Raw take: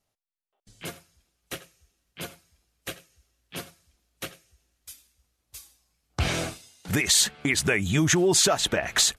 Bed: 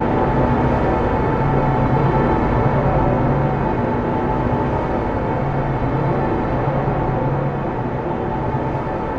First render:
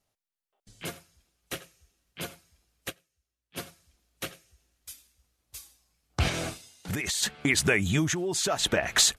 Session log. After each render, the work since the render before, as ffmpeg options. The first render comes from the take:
-filter_complex "[0:a]asplit=3[a][b][c];[a]afade=t=out:st=6.28:d=0.02[d];[b]acompressor=threshold=-27dB:ratio=6:attack=3.2:release=140:knee=1:detection=peak,afade=t=in:st=6.28:d=0.02,afade=t=out:st=7.22:d=0.02[e];[c]afade=t=in:st=7.22:d=0.02[f];[d][e][f]amix=inputs=3:normalize=0,asplit=5[g][h][i][j][k];[g]atrim=end=3.03,asetpts=PTS-STARTPTS,afade=t=out:st=2.89:d=0.14:c=exp:silence=0.149624[l];[h]atrim=start=3.03:end=3.44,asetpts=PTS-STARTPTS,volume=-16.5dB[m];[i]atrim=start=3.44:end=8.15,asetpts=PTS-STARTPTS,afade=t=in:d=0.14:c=exp:silence=0.149624,afade=t=out:st=4.43:d=0.28:silence=0.354813[n];[j]atrim=start=8.15:end=8.42,asetpts=PTS-STARTPTS,volume=-9dB[o];[k]atrim=start=8.42,asetpts=PTS-STARTPTS,afade=t=in:d=0.28:silence=0.354813[p];[l][m][n][o][p]concat=n=5:v=0:a=1"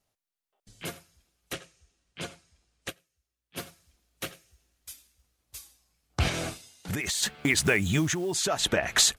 -filter_complex "[0:a]asettb=1/sr,asplit=3[a][b][c];[a]atrim=end=1.534[d];[b]atrim=start=1.53:end=2.89,asetpts=PTS-STARTPTS,afade=t=in:d=0.004:c=qsin,afade=t=out:st=1.356:d=0.004:c=qsin,lowpass=f=9.1k:w=0.5412,lowpass=f=9.1k:w=1.3066[e];[c]atrim=start=2.886[f];[d][e]acrossfade=d=0.004:c1=hsin:c2=qsin[g];[g][f]acrossfade=d=0.004:c1=qsin:c2=hsin,asettb=1/sr,asplit=3[h][i][j];[h]atrim=end=3.594[k];[i]atrim=start=3.59:end=5.57,asetpts=PTS-STARTPTS,afade=t=in:d=0.004:c=qsin,afade=t=out:st=1.976:d=0.004:c=qsin,acrusher=bits=5:mode=log:mix=0:aa=0.000001[l];[j]atrim=start=5.566[m];[k][l]acrossfade=d=0.004:c1=hsin:c2=qsin[n];[n][m]acrossfade=d=0.004:c1=qsin:c2=hsin,asettb=1/sr,asplit=3[o][p][q];[o]atrim=end=7.014[r];[p]atrim=start=7.01:end=8.35,asetpts=PTS-STARTPTS,afade=t=in:d=0.004:c=qsin,afade=t=out:st=1.336:d=0.004:c=qsin,acrusher=bits=6:mode=log:mix=0:aa=0.000001[s];[q]atrim=start=8.346[t];[r][s]acrossfade=d=0.004:c1=hsin:c2=qsin[u];[u][t]acrossfade=d=0.004:c1=qsin:c2=hsin"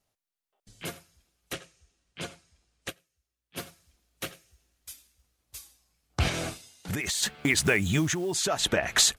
-af anull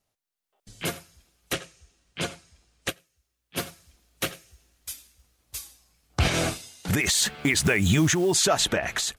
-af "alimiter=limit=-19dB:level=0:latency=1:release=93,dynaudnorm=f=120:g=9:m=7.5dB"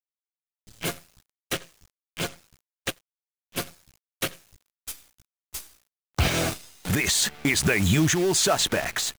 -af "acrusher=bits=6:dc=4:mix=0:aa=0.000001"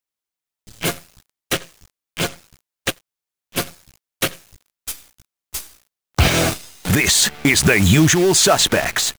-af "volume=8dB"

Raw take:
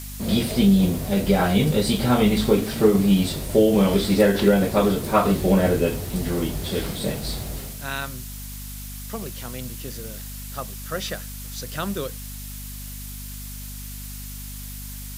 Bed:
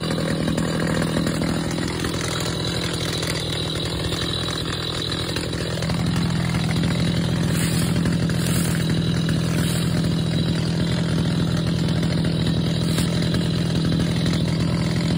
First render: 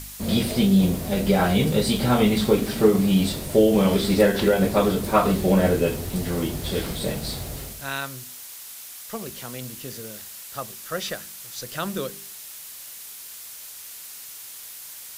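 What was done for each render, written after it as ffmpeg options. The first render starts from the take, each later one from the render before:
-af "bandreject=f=50:t=h:w=4,bandreject=f=100:t=h:w=4,bandreject=f=150:t=h:w=4,bandreject=f=200:t=h:w=4,bandreject=f=250:t=h:w=4,bandreject=f=300:t=h:w=4,bandreject=f=350:t=h:w=4,bandreject=f=400:t=h:w=4"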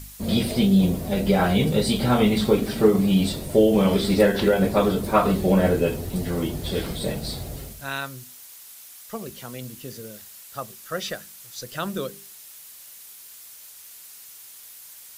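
-af "afftdn=nr=6:nf=-40"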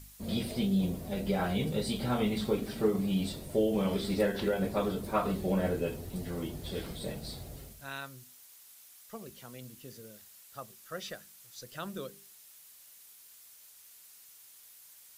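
-af "volume=-11dB"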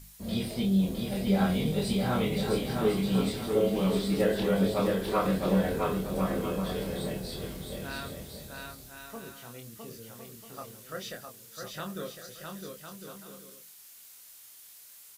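-filter_complex "[0:a]asplit=2[a][b];[b]adelay=26,volume=-4.5dB[c];[a][c]amix=inputs=2:normalize=0,asplit=2[d][e];[e]aecho=0:1:660|1056|1294|1436|1522:0.631|0.398|0.251|0.158|0.1[f];[d][f]amix=inputs=2:normalize=0"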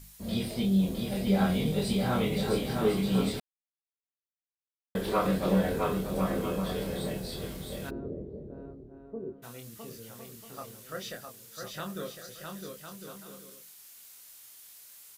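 -filter_complex "[0:a]asplit=3[a][b][c];[a]afade=t=out:st=7.89:d=0.02[d];[b]lowpass=f=390:t=q:w=3.6,afade=t=in:st=7.89:d=0.02,afade=t=out:st=9.42:d=0.02[e];[c]afade=t=in:st=9.42:d=0.02[f];[d][e][f]amix=inputs=3:normalize=0,asplit=3[g][h][i];[g]atrim=end=3.4,asetpts=PTS-STARTPTS,afade=t=out:st=3.396:d=0.004:c=hsin[j];[h]atrim=start=3.4:end=4.95,asetpts=PTS-STARTPTS,volume=0[k];[i]atrim=start=4.95,asetpts=PTS-STARTPTS,afade=t=in:d=0.004:c=hsin[l];[j][k][l]concat=n=3:v=0:a=1"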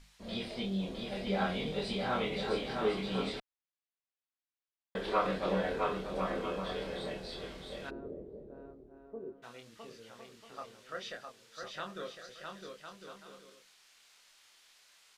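-af "lowpass=4.1k,equalizer=f=110:t=o:w=2.8:g=-14"

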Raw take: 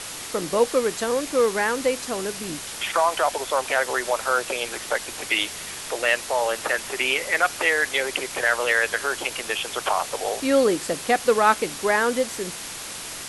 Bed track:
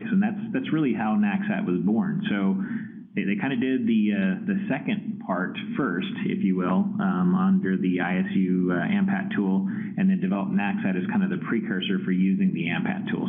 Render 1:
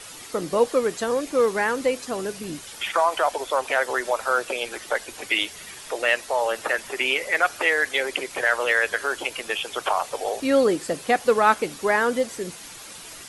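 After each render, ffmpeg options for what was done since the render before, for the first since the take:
-af "afftdn=nr=9:nf=-35"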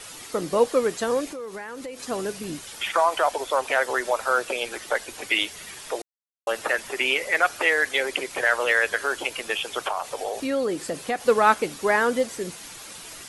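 -filter_complex "[0:a]asettb=1/sr,asplit=3[a][b][c];[a]atrim=end=1.264[d];[b]atrim=start=1.26:end=2,asetpts=PTS-STARTPTS,afade=t=in:d=0.004:c=qsin,afade=t=out:st=0.736:d=0.004:c=qsin,acompressor=threshold=-33dB:ratio=6:attack=3.2:release=140:knee=1:detection=peak[e];[c]atrim=start=1.996[f];[d][e]acrossfade=d=0.004:c1=hsin:c2=qsin[g];[g][f]acrossfade=d=0.004:c1=qsin:c2=hsin,asettb=1/sr,asplit=3[h][i][j];[h]atrim=end=9.874[k];[i]atrim=start=9.87:end=11.25,asetpts=PTS-STARTPTS,afade=t=in:d=0.004:c=qsin,afade=t=out:st=1.376:d=0.004:c=qsin,acompressor=threshold=-26dB:ratio=2:attack=3.2:release=140:knee=1:detection=peak[l];[j]atrim=start=11.246[m];[k][l]acrossfade=d=0.004:c1=hsin:c2=qsin[n];[n][m]acrossfade=d=0.004:c1=qsin:c2=hsin,asplit=3[o][p][q];[o]atrim=end=6.02,asetpts=PTS-STARTPTS,afade=t=out:st=6.016:d=0.004:c=hsin[r];[p]atrim=start=6.02:end=6.47,asetpts=PTS-STARTPTS,volume=0[s];[q]atrim=start=6.47,asetpts=PTS-STARTPTS,afade=t=in:d=0.004:c=hsin[t];[r][s][t]concat=n=3:v=0:a=1"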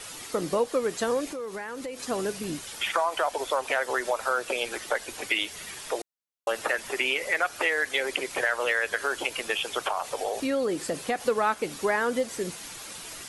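-af "acompressor=threshold=-23dB:ratio=3"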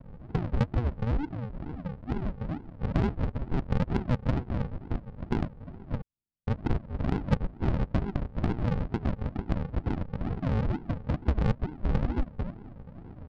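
-af "aresample=11025,acrusher=samples=26:mix=1:aa=0.000001:lfo=1:lforange=15.6:lforate=2.2,aresample=44100,adynamicsmooth=sensitivity=0.5:basefreq=1.1k"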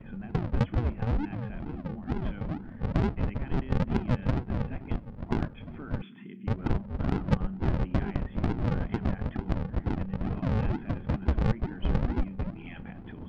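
-filter_complex "[1:a]volume=-18.5dB[a];[0:a][a]amix=inputs=2:normalize=0"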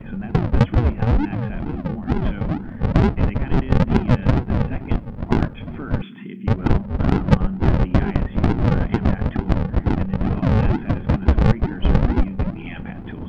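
-af "volume=10.5dB"

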